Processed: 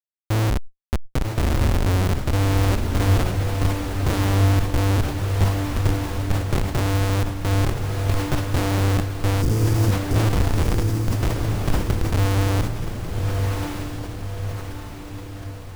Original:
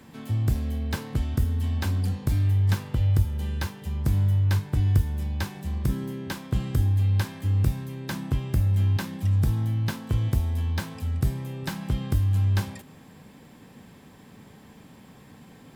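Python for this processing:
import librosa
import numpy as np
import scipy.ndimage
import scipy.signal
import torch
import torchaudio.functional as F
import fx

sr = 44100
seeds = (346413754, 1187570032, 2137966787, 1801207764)

p1 = scipy.signal.sosfilt(scipy.signal.butter(2, 61.0, 'highpass', fs=sr, output='sos'), x)
p2 = fx.low_shelf(p1, sr, hz=200.0, db=-3.5)
p3 = fx.hpss(p2, sr, part='harmonic', gain_db=7)
p4 = fx.schmitt(p3, sr, flips_db=-19.0)
p5 = fx.spec_erase(p4, sr, start_s=9.42, length_s=0.73, low_hz=520.0, high_hz=4500.0)
p6 = p5 + fx.echo_diffused(p5, sr, ms=1198, feedback_pct=51, wet_db=-3.5, dry=0)
p7 = fx.sustainer(p6, sr, db_per_s=80.0)
y = p7 * librosa.db_to_amplitude(3.5)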